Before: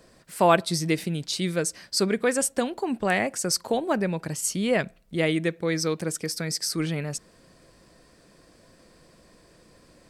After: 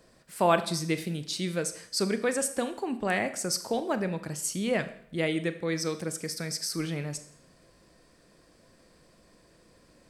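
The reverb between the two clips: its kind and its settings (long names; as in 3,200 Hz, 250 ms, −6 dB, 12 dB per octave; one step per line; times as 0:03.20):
four-comb reverb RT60 0.63 s, combs from 27 ms, DRR 10.5 dB
level −4.5 dB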